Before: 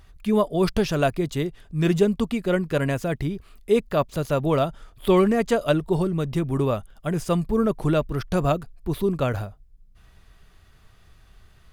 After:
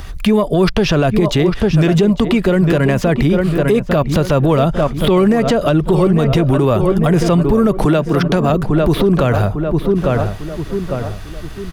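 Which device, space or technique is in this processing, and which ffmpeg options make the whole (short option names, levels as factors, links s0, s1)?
mastering chain: -filter_complex "[0:a]asettb=1/sr,asplit=3[s0][s1][s2];[s0]atrim=end=7.854[s3];[s1]atrim=start=7.85:end=8.5,asetpts=PTS-STARTPTS,afade=t=in:d=0.004:c=qsin,afade=t=out:st=0.646:d=0.004:c=qsin,highpass=f=150:w=0.5412,highpass=f=150:w=1.3066[s4];[s2]atrim=start=8.496[s5];[s3][s4]acrossfade=d=0.004:c1=hsin:c2=qsin[s6];[s6][s5]acrossfade=d=0.004:c1=qsin:c2=hsin,equalizer=f=5600:t=o:w=0.28:g=2.5,asplit=2[s7][s8];[s8]adelay=850,lowpass=f=2000:p=1,volume=0.251,asplit=2[s9][s10];[s10]adelay=850,lowpass=f=2000:p=1,volume=0.41,asplit=2[s11][s12];[s12]adelay=850,lowpass=f=2000:p=1,volume=0.41,asplit=2[s13][s14];[s14]adelay=850,lowpass=f=2000:p=1,volume=0.41[s15];[s7][s9][s11][s13][s15]amix=inputs=5:normalize=0,acrossover=split=270|4400[s16][s17][s18];[s16]acompressor=threshold=0.0398:ratio=4[s19];[s17]acompressor=threshold=0.0501:ratio=4[s20];[s18]acompressor=threshold=0.00141:ratio=4[s21];[s19][s20][s21]amix=inputs=3:normalize=0,acompressor=threshold=0.0355:ratio=2.5,asoftclip=type=tanh:threshold=0.112,alimiter=level_in=21.1:limit=0.891:release=50:level=0:latency=1,volume=0.596"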